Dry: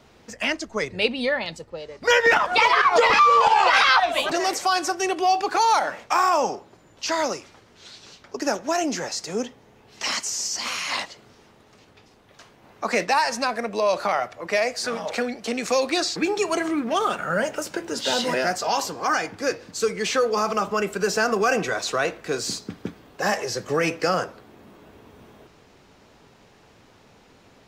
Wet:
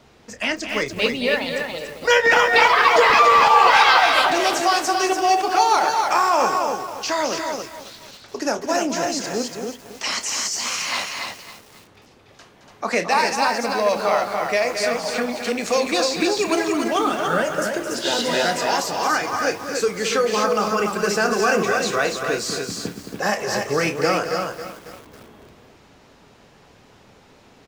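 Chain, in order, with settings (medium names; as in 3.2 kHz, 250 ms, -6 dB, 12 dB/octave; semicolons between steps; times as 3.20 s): loudspeakers at several distances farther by 10 m -11 dB, 75 m -9 dB, 99 m -5 dB; bit-crushed delay 274 ms, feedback 55%, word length 6-bit, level -11 dB; trim +1 dB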